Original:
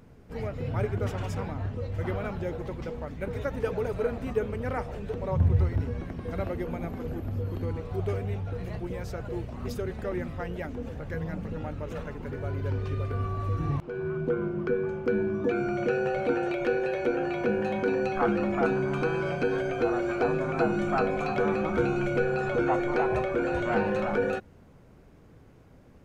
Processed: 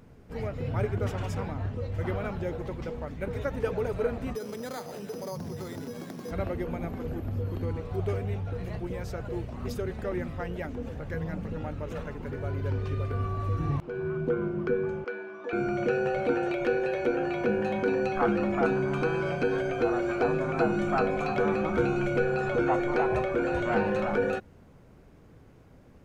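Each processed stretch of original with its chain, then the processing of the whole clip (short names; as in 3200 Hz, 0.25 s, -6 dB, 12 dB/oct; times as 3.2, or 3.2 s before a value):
4.35–6.31 HPF 160 Hz 24 dB/oct + compressor 3:1, threshold -33 dBFS + careless resampling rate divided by 8×, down none, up hold
15.04–15.53 HPF 750 Hz + air absorption 95 m
whole clip: dry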